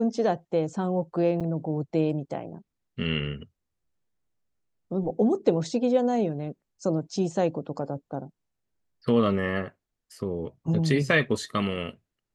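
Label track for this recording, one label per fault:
1.400000	1.410000	drop-out 6.6 ms

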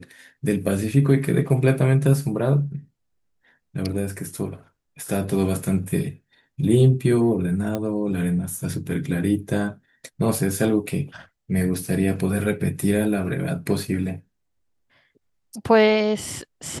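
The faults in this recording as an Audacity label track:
7.750000	7.750000	click −13 dBFS

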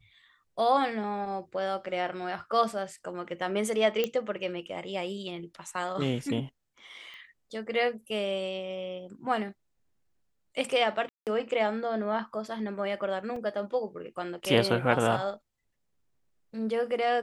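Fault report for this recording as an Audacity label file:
4.040000	4.040000	click −14 dBFS
7.140000	7.140000	click −34 dBFS
11.090000	11.270000	drop-out 178 ms
13.360000	13.360000	drop-out 3.3 ms

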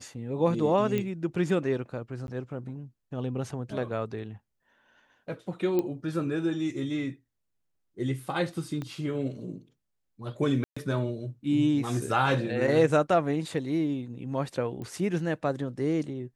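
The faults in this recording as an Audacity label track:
0.980000	0.980000	click −17 dBFS
2.270000	2.280000	drop-out 11 ms
5.790000	5.790000	click −16 dBFS
8.820000	8.820000	click −23 dBFS
10.640000	10.770000	drop-out 125 ms
14.820000	14.820000	click −27 dBFS

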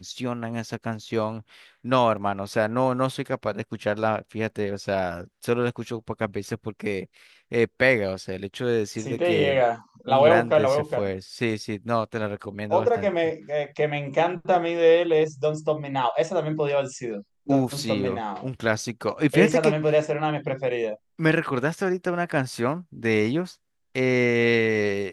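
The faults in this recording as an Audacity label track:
2.170000	2.170000	drop-out 2.1 ms

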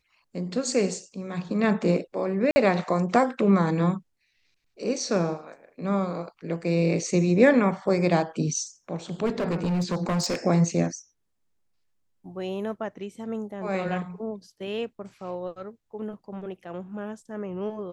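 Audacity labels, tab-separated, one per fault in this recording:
2.510000	2.560000	drop-out 50 ms
9.250000	10.350000	clipping −22 dBFS

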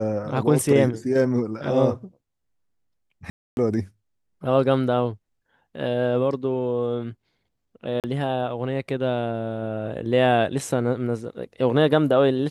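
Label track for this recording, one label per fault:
3.300000	3.570000	drop-out 271 ms
8.000000	8.040000	drop-out 38 ms

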